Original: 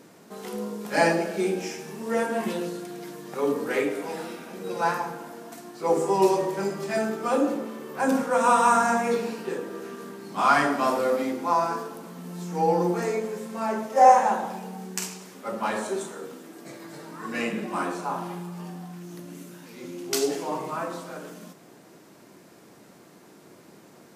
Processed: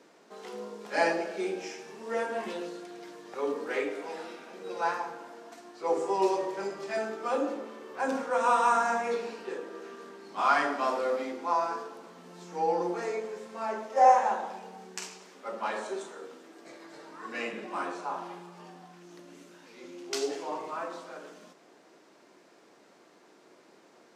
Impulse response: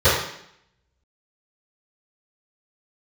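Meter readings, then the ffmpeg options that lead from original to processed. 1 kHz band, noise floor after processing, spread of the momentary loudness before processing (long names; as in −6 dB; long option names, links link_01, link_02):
−4.5 dB, −59 dBFS, 19 LU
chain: -filter_complex "[0:a]acrossover=split=280 7300:gain=0.126 1 0.126[link_01][link_02][link_03];[link_01][link_02][link_03]amix=inputs=3:normalize=0,volume=-4.5dB"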